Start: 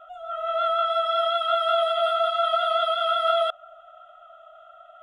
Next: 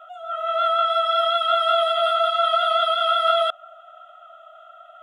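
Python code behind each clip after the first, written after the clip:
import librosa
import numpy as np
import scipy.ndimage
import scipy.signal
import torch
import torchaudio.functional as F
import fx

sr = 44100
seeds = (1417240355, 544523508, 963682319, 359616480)

y = fx.highpass(x, sr, hz=760.0, slope=6)
y = F.gain(torch.from_numpy(y), 5.0).numpy()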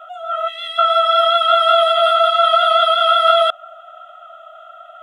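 y = fx.spec_box(x, sr, start_s=0.48, length_s=0.3, low_hz=540.0, high_hz=1800.0, gain_db=-22)
y = F.gain(torch.from_numpy(y), 6.5).numpy()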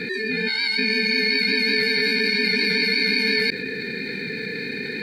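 y = fx.high_shelf_res(x, sr, hz=2100.0, db=6.0, q=3.0)
y = y * np.sin(2.0 * np.pi * 1100.0 * np.arange(len(y)) / sr)
y = fx.env_flatten(y, sr, amount_pct=70)
y = F.gain(torch.from_numpy(y), -7.5).numpy()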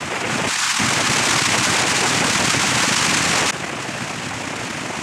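y = fx.noise_vocoder(x, sr, seeds[0], bands=4)
y = F.gain(torch.from_numpy(y), 3.5).numpy()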